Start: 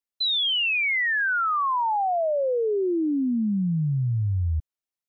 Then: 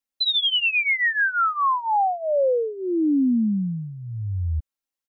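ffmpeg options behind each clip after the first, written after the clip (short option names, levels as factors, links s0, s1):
-af "aecho=1:1:3.7:0.76"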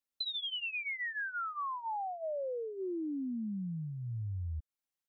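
-af "acompressor=threshold=0.0282:ratio=12,volume=0.596"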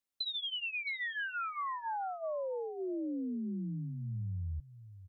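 -af "aecho=1:1:669:0.188"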